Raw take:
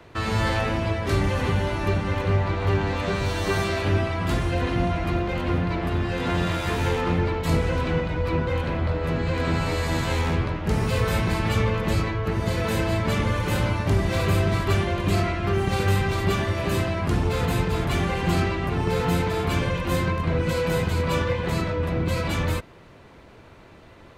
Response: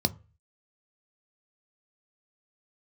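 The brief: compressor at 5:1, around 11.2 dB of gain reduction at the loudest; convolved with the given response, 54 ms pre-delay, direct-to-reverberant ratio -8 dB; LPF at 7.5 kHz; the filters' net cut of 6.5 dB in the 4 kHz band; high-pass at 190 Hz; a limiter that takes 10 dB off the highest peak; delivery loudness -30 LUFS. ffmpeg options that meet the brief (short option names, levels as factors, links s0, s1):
-filter_complex "[0:a]highpass=190,lowpass=7500,equalizer=f=4000:t=o:g=-8.5,acompressor=threshold=0.0178:ratio=5,alimiter=level_in=3.16:limit=0.0631:level=0:latency=1,volume=0.316,asplit=2[s0][s1];[1:a]atrim=start_sample=2205,adelay=54[s2];[s1][s2]afir=irnorm=-1:irlink=0,volume=1[s3];[s0][s3]amix=inputs=2:normalize=0,volume=0.841"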